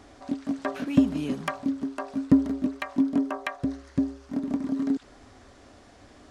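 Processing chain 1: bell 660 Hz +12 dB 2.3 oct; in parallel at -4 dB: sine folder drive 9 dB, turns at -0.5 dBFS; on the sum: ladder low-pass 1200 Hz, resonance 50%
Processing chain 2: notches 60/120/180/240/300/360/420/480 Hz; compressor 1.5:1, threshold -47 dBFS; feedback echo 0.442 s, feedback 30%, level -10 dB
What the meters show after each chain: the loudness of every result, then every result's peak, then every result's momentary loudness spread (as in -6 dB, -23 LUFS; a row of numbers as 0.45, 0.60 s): -20.5, -37.0 LUFS; -2.5, -18.5 dBFS; 22, 14 LU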